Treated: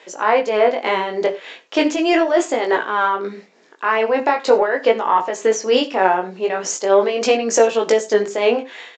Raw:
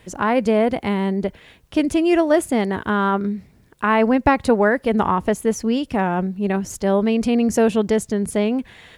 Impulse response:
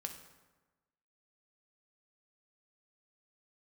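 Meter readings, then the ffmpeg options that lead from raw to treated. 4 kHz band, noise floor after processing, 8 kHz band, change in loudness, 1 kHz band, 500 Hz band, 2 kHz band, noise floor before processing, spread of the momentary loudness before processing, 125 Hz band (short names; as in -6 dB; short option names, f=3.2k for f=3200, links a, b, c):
+7.5 dB, -49 dBFS, +6.5 dB, +2.0 dB, +4.0 dB, +4.0 dB, +3.5 dB, -53 dBFS, 6 LU, under -15 dB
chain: -filter_complex "[0:a]highpass=f=380:w=0.5412,highpass=f=380:w=1.3066,dynaudnorm=f=340:g=5:m=5.5dB,alimiter=limit=-12dB:level=0:latency=1:release=67,acontrast=42,tremolo=f=3.3:d=0.56,flanger=delay=17.5:depth=4.8:speed=0.39,asplit=2[a][b];[1:a]atrim=start_sample=2205,afade=t=out:st=0.15:d=0.01,atrim=end_sample=7056[c];[b][c]afir=irnorm=-1:irlink=0,volume=4dB[d];[a][d]amix=inputs=2:normalize=0,aresample=16000,aresample=44100,volume=-1dB"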